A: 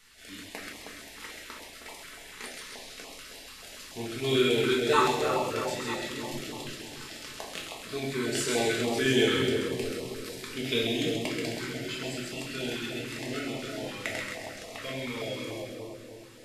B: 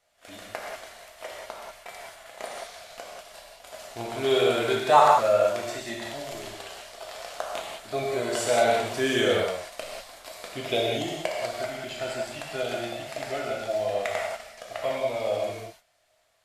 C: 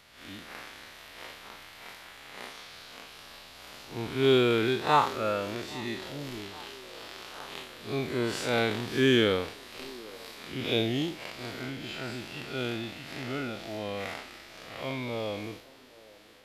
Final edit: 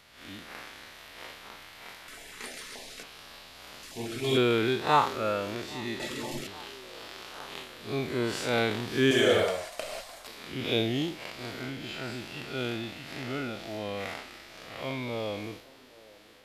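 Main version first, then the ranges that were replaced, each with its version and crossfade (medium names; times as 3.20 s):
C
2.08–3.03 s: from A
3.83–4.37 s: from A
6.00–6.47 s: from A
9.11–10.27 s: from B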